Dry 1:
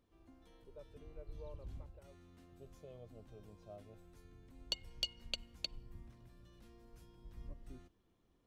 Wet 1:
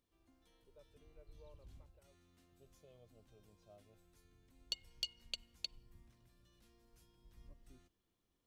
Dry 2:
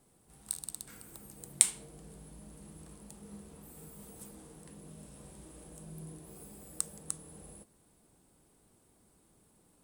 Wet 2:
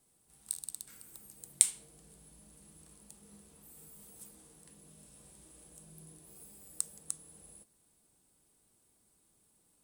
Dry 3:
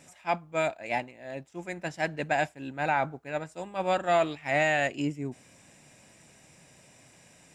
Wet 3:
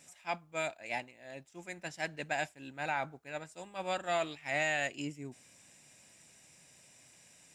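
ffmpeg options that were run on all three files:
-af "highshelf=frequency=2100:gain=10,volume=-10dB"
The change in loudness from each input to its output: +1.5, +1.5, −7.0 LU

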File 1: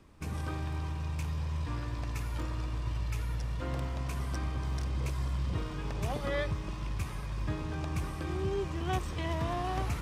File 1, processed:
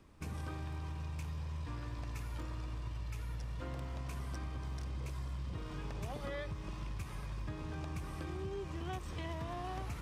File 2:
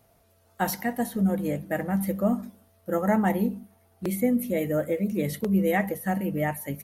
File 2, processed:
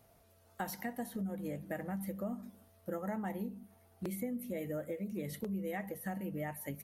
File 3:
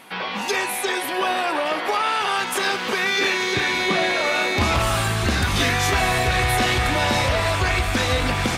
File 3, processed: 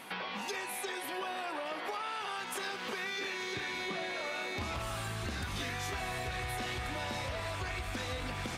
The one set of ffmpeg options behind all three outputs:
-af "acompressor=threshold=-35dB:ratio=4,volume=-3dB"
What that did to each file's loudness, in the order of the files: −7.5, −13.5, −16.5 LU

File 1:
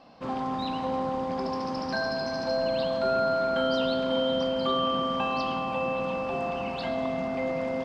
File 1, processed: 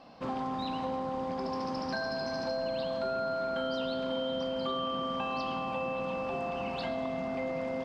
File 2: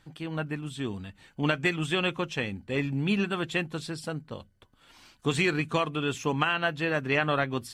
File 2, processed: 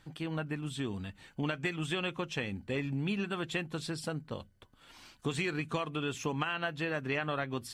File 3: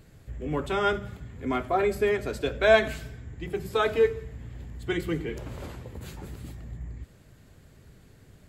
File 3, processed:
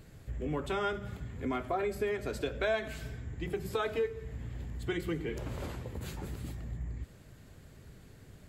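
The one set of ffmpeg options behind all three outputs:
-af "acompressor=threshold=-32dB:ratio=3"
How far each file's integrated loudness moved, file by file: −5.5, −6.5, −9.5 LU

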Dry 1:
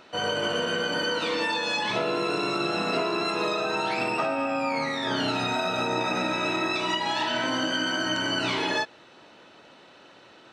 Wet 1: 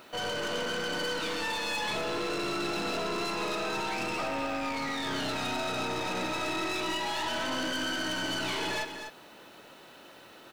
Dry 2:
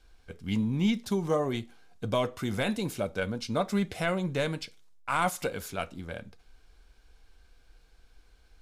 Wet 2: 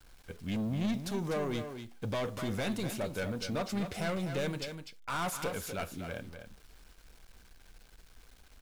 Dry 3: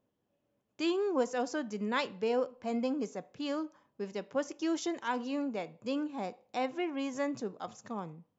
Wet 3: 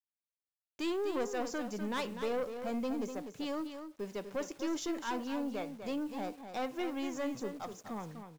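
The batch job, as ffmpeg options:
-af "aeval=exprs='(tanh(31.6*val(0)+0.25)-tanh(0.25))/31.6':channel_layout=same,acrusher=bits=9:mix=0:aa=0.000001,aecho=1:1:248:0.376"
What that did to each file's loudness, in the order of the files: −5.0, −5.0, −2.5 LU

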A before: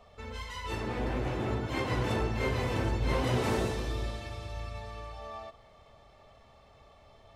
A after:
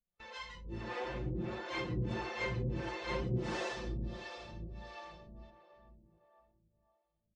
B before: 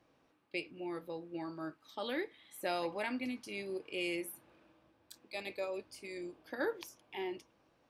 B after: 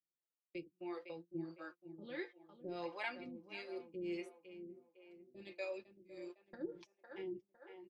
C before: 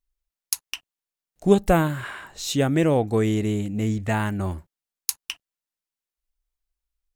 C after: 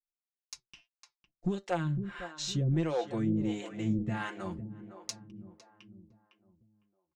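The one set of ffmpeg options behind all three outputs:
-filter_complex "[0:a]flanger=delay=5:depth=4:regen=76:speed=0.62:shape=triangular,lowpass=frequency=6700:width=0.5412,lowpass=frequency=6700:width=1.3066,equalizer=frequency=760:width_type=o:width=1:gain=-3,agate=range=-31dB:threshold=-49dB:ratio=16:detection=peak,alimiter=limit=-19.5dB:level=0:latency=1:release=438,aecho=1:1:5.7:0.72,asoftclip=type=tanh:threshold=-19.5dB,asplit=2[link_01][link_02];[link_02]adelay=506,lowpass=frequency=1300:poles=1,volume=-10.5dB,asplit=2[link_03][link_04];[link_04]adelay=506,lowpass=frequency=1300:poles=1,volume=0.5,asplit=2[link_05][link_06];[link_06]adelay=506,lowpass=frequency=1300:poles=1,volume=0.5,asplit=2[link_07][link_08];[link_08]adelay=506,lowpass=frequency=1300:poles=1,volume=0.5,asplit=2[link_09][link_10];[link_10]adelay=506,lowpass=frequency=1300:poles=1,volume=0.5[link_11];[link_01][link_03][link_05][link_07][link_09][link_11]amix=inputs=6:normalize=0,acrossover=split=400[link_12][link_13];[link_12]aeval=exprs='val(0)*(1-1/2+1/2*cos(2*PI*1.5*n/s))':channel_layout=same[link_14];[link_13]aeval=exprs='val(0)*(1-1/2-1/2*cos(2*PI*1.5*n/s))':channel_layout=same[link_15];[link_14][link_15]amix=inputs=2:normalize=0,volume=2dB"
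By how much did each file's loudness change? −6.5, −7.0, −10.0 LU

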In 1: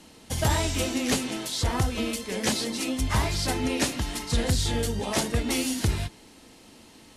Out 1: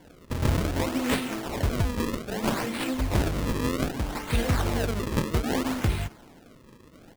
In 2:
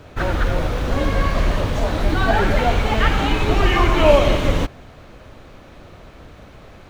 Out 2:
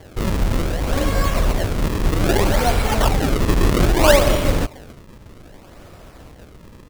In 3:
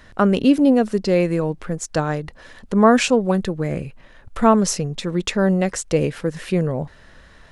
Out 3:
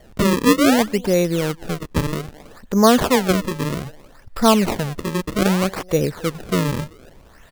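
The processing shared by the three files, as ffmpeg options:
-filter_complex "[0:a]asplit=2[link_01][link_02];[link_02]adelay=270,highpass=300,lowpass=3400,asoftclip=type=hard:threshold=-10.5dB,volume=-21dB[link_03];[link_01][link_03]amix=inputs=2:normalize=0,acrusher=samples=34:mix=1:aa=0.000001:lfo=1:lforange=54.4:lforate=0.63"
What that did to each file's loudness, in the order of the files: −1.0, 0.0, +0.5 LU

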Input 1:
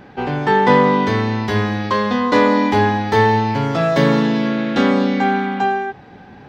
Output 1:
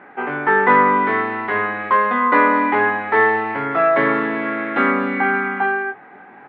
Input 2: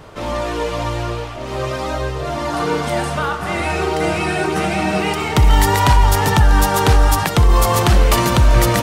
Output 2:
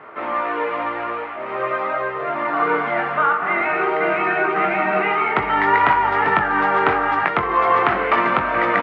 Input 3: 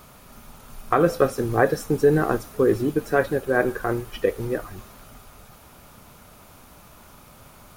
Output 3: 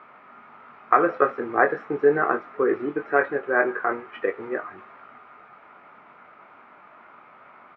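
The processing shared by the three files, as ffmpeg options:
-filter_complex "[0:a]highpass=400,equalizer=frequency=520:width_type=q:width=4:gain=-5,equalizer=frequency=1300:width_type=q:width=4:gain=5,equalizer=frequency=2100:width_type=q:width=4:gain=5,lowpass=frequency=2200:width=0.5412,lowpass=frequency=2200:width=1.3066,asplit=2[link_01][link_02];[link_02]adelay=21,volume=-7dB[link_03];[link_01][link_03]amix=inputs=2:normalize=0,volume=1dB"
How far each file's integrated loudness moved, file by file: −0.5, −2.0, −1.0 LU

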